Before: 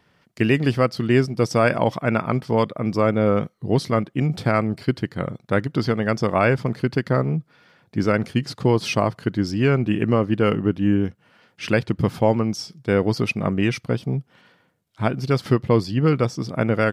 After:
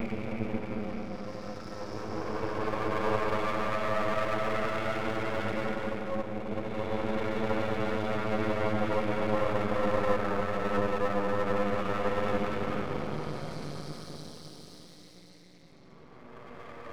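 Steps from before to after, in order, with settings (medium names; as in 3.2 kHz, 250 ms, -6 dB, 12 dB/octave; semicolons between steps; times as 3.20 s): level-controlled noise filter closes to 500 Hz, open at -14 dBFS; bass shelf 280 Hz -10 dB; hum notches 60/120/180/240/300/360/420/480/540 Hz; peak limiter -13.5 dBFS, peak gain reduction 7.5 dB; reverse echo 355 ms -13.5 dB; Paulstretch 24×, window 0.10 s, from 2.87 s; half-wave rectifier; trim -2.5 dB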